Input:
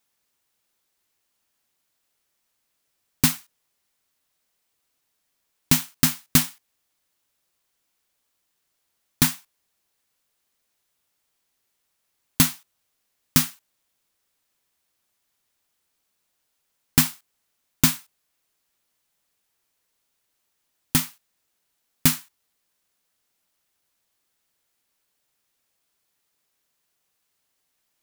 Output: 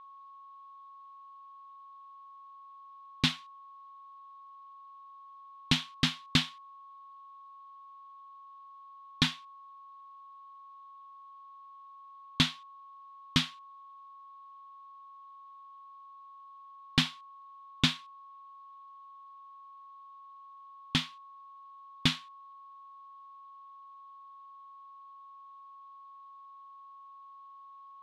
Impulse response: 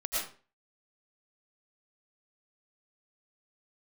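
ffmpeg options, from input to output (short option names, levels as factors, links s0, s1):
-af "aeval=exprs='val(0)+0.00794*sin(2*PI*1100*n/s)':c=same,lowpass=f=3500:t=q:w=3.3,volume=0.422"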